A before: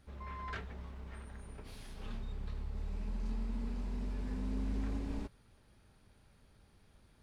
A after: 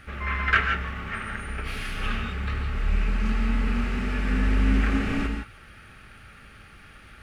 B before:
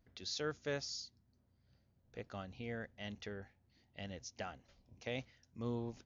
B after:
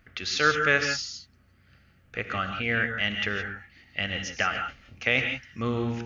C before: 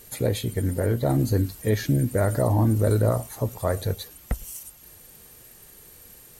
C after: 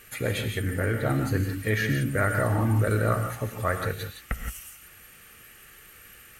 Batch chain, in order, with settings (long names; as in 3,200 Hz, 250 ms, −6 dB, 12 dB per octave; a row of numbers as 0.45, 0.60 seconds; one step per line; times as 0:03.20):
Butterworth band-reject 1,000 Hz, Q 6.3
flat-topped bell 1,800 Hz +12.5 dB
reverb whose tail is shaped and stops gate 190 ms rising, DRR 5 dB
loudness normalisation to −27 LKFS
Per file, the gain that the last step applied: +12.5, +11.0, −5.0 decibels